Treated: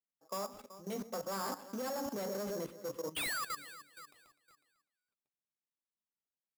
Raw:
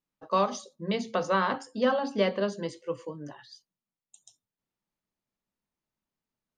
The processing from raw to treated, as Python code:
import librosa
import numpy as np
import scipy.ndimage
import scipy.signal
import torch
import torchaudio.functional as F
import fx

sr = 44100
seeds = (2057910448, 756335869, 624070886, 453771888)

y = fx.doppler_pass(x, sr, speed_mps=5, closest_m=4.0, pass_at_s=2.75)
y = fx.spec_paint(y, sr, seeds[0], shape='fall', start_s=3.15, length_s=0.29, low_hz=1100.0, high_hz=3100.0, level_db=-26.0)
y = fx.echo_alternate(y, sr, ms=125, hz=2000.0, feedback_pct=66, wet_db=-12)
y = 10.0 ** (-32.0 / 20.0) * np.tanh(y / 10.0 ** (-32.0 / 20.0))
y = fx.peak_eq(y, sr, hz=3200.0, db=-10.0, octaves=1.6)
y = fx.level_steps(y, sr, step_db=14)
y = scipy.signal.sosfilt(scipy.signal.butter(2, 170.0, 'highpass', fs=sr, output='sos'), y)
y = fx.sample_hold(y, sr, seeds[1], rate_hz=6100.0, jitter_pct=0)
y = fx.high_shelf(y, sr, hz=4900.0, db=5.5)
y = fx.buffer_glitch(y, sr, at_s=(4.98,), block=512, repeats=8)
y = y * librosa.db_to_amplitude(4.0)